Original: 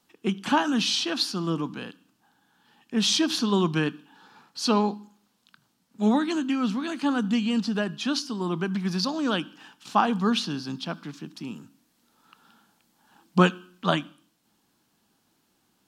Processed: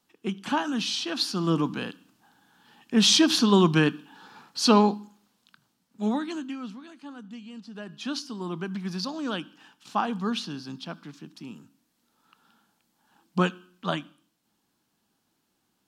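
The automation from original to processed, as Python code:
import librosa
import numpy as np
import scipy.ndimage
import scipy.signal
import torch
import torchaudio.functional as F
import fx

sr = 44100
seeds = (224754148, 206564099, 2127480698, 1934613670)

y = fx.gain(x, sr, db=fx.line((1.01, -4.0), (1.57, 4.0), (4.81, 4.0), (6.41, -7.0), (6.96, -17.5), (7.64, -17.5), (8.07, -5.0)))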